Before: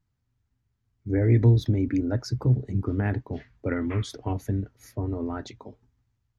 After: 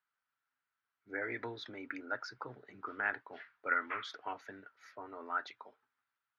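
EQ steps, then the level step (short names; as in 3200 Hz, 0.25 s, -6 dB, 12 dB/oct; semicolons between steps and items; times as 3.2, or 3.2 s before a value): HPF 1100 Hz 12 dB/oct; air absorption 260 m; bell 1400 Hz +10 dB 0.45 oct; +1.5 dB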